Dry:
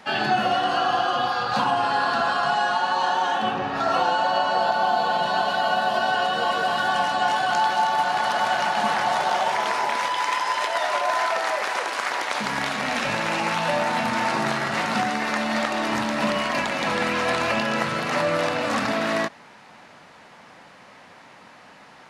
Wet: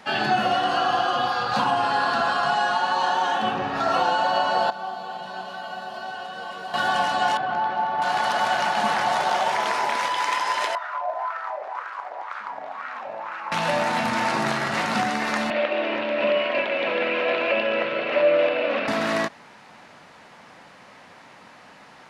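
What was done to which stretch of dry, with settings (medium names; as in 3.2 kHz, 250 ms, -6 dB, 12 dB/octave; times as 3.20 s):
4.70–6.74 s: feedback comb 190 Hz, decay 0.59 s, mix 80%
7.37–8.02 s: tape spacing loss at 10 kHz 36 dB
10.75–13.52 s: wah-wah 2 Hz 640–1400 Hz, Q 3.9
15.50–18.88 s: cabinet simulation 350–3200 Hz, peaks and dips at 360 Hz +5 dB, 570 Hz +9 dB, 830 Hz -8 dB, 1.2 kHz -7 dB, 1.8 kHz -4 dB, 2.6 kHz +6 dB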